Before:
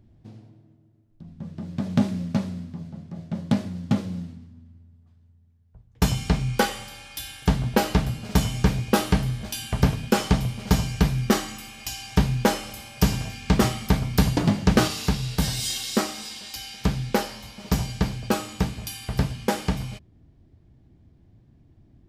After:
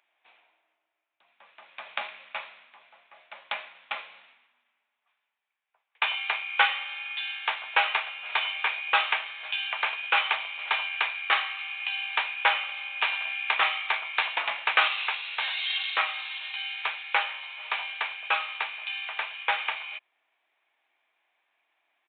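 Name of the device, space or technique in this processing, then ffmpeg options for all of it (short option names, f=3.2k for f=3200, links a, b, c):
musical greeting card: -af "aresample=8000,aresample=44100,highpass=f=880:w=0.5412,highpass=f=880:w=1.3066,equalizer=f=2.4k:t=o:w=0.37:g=10,volume=3.5dB"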